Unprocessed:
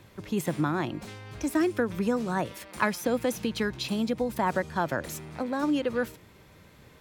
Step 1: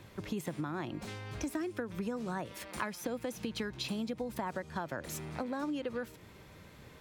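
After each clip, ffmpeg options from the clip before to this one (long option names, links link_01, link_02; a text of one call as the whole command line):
ffmpeg -i in.wav -af "equalizer=frequency=15000:width_type=o:width=0.89:gain=-2.5,acompressor=threshold=-34dB:ratio=6" out.wav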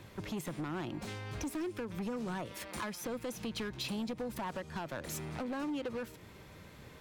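ffmpeg -i in.wav -af "asoftclip=type=hard:threshold=-34.5dB,volume=1dB" out.wav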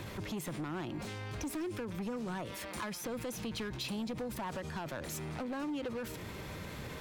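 ffmpeg -i in.wav -af "alimiter=level_in=20.5dB:limit=-24dB:level=0:latency=1:release=35,volume=-20.5dB,volume=10.5dB" out.wav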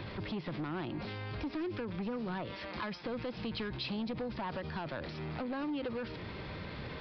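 ffmpeg -i in.wav -af "aresample=11025,aresample=44100,volume=1dB" out.wav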